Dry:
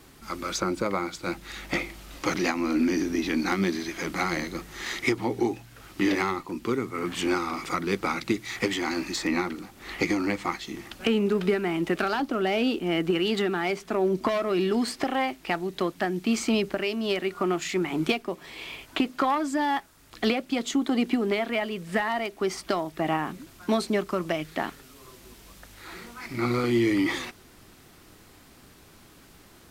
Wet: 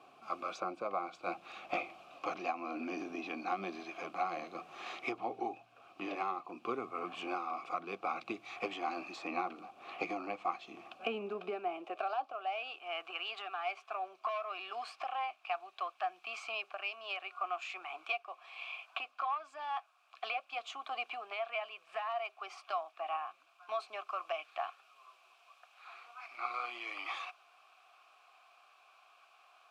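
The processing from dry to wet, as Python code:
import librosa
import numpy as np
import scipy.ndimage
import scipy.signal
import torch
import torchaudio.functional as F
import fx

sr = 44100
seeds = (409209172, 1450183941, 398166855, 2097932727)

y = fx.vowel_filter(x, sr, vowel='a')
y = fx.filter_sweep_highpass(y, sr, from_hz=100.0, to_hz=1200.0, start_s=10.83, end_s=12.65, q=1.0)
y = fx.rider(y, sr, range_db=4, speed_s=0.5)
y = y * 10.0 ** (3.5 / 20.0)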